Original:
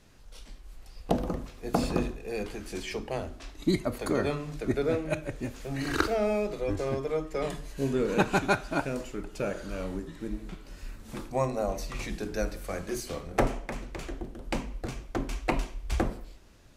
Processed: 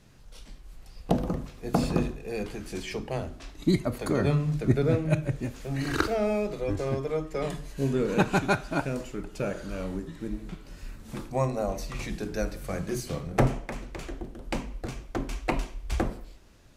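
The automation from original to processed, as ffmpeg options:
ffmpeg -i in.wav -af "asetnsamples=nb_out_samples=441:pad=0,asendcmd='4.21 equalizer g 13.5;5.4 equalizer g 5;12.62 equalizer g 11.5;13.64 equalizer g 1',equalizer=frequency=140:width_type=o:width=1.1:gain=6.5" out.wav

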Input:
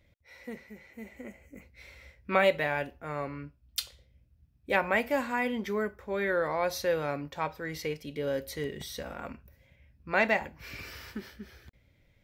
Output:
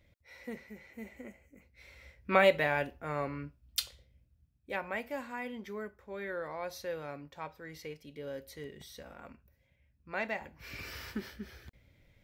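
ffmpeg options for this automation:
ffmpeg -i in.wav -af "volume=20dB,afade=type=out:start_time=1.04:duration=0.53:silence=0.354813,afade=type=in:start_time=1.57:duration=0.74:silence=0.316228,afade=type=out:start_time=3.8:duration=0.91:silence=0.316228,afade=type=in:start_time=10.37:duration=0.62:silence=0.281838" out.wav

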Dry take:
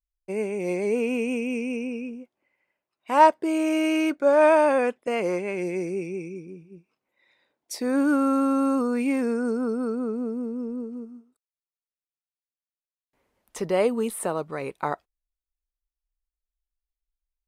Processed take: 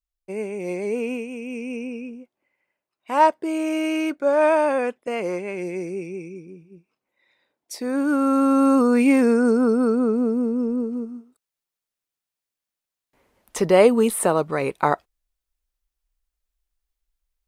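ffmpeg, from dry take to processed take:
ffmpeg -i in.wav -af "volume=14.5dB,afade=type=out:start_time=1.12:duration=0.16:silence=0.473151,afade=type=in:start_time=1.28:duration=0.51:silence=0.446684,afade=type=in:start_time=8.04:duration=0.92:silence=0.375837" out.wav

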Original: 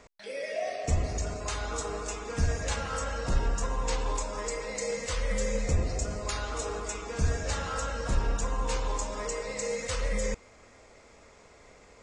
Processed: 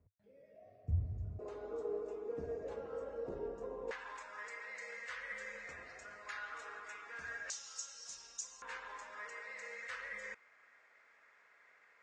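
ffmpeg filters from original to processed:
ffmpeg -i in.wav -af "asetnsamples=nb_out_samples=441:pad=0,asendcmd='1.39 bandpass f 420;3.91 bandpass f 1700;7.5 bandpass f 6000;8.62 bandpass f 1700',bandpass=frequency=100:width_type=q:width=3.8:csg=0" out.wav

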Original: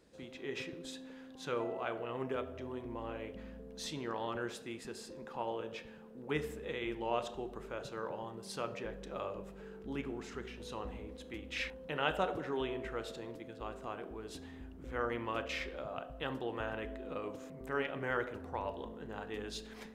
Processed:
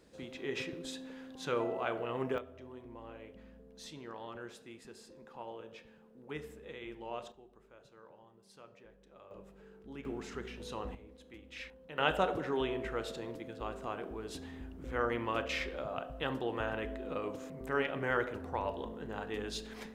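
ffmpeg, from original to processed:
ffmpeg -i in.wav -af "asetnsamples=nb_out_samples=441:pad=0,asendcmd='2.38 volume volume -7dB;7.32 volume volume -16.5dB;9.31 volume volume -7dB;10.05 volume volume 1.5dB;10.95 volume volume -8dB;11.98 volume volume 3dB',volume=3dB" out.wav

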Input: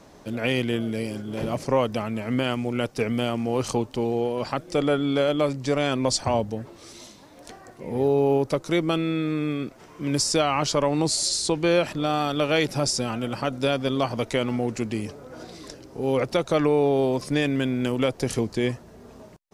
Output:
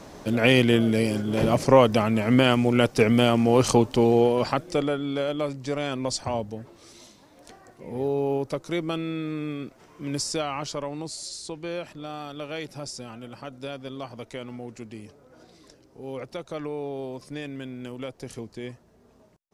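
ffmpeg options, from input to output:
ffmpeg -i in.wav -af "volume=6dB,afade=type=out:start_time=4.22:duration=0.72:silence=0.281838,afade=type=out:start_time=10.13:duration=0.95:silence=0.446684" out.wav

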